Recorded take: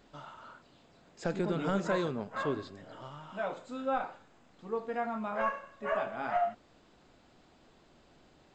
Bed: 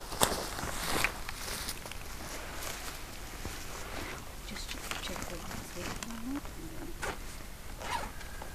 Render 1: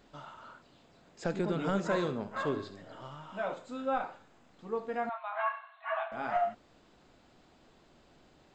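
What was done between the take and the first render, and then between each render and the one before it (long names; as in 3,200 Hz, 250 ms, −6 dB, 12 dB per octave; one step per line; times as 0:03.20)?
0:01.84–0:03.55: flutter between parallel walls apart 11.5 metres, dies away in 0.34 s
0:05.09–0:06.12: linear-phase brick-wall band-pass 630–4,300 Hz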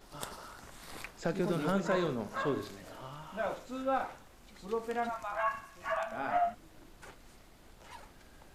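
mix in bed −15 dB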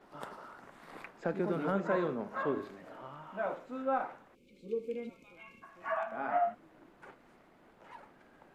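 three-way crossover with the lows and the highs turned down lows −19 dB, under 150 Hz, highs −17 dB, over 2,400 Hz
0:04.35–0:05.63: gain on a spectral selection 580–2,100 Hz −27 dB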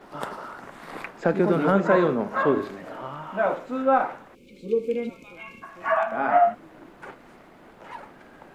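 level +12 dB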